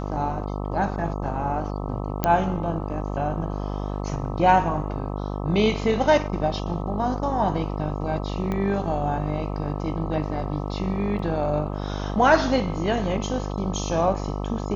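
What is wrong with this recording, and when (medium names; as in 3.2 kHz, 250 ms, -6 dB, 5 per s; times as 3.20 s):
buzz 50 Hz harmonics 26 -29 dBFS
2.24 s: pop -7 dBFS
8.52 s: pop -16 dBFS
11.19 s: dropout 2.7 ms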